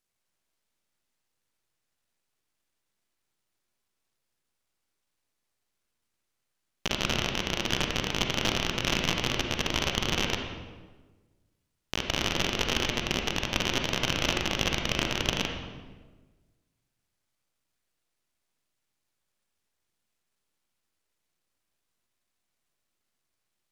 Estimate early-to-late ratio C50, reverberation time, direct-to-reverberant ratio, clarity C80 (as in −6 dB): 3.5 dB, 1.3 s, 2.5 dB, 5.5 dB